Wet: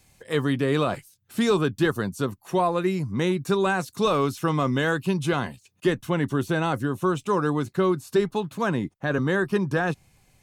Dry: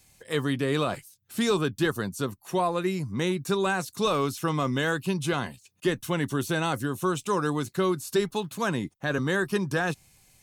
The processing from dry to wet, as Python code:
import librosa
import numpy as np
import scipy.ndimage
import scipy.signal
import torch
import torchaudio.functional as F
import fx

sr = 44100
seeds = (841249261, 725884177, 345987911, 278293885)

y = fx.high_shelf(x, sr, hz=3100.0, db=fx.steps((0.0, -6.5), (5.94, -11.5)))
y = F.gain(torch.from_numpy(y), 3.5).numpy()